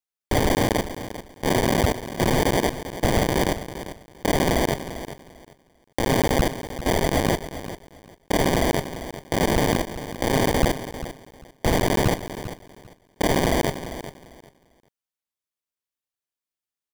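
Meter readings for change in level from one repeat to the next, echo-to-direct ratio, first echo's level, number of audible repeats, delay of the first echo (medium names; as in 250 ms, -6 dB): -13.5 dB, -12.5 dB, -12.5 dB, 2, 396 ms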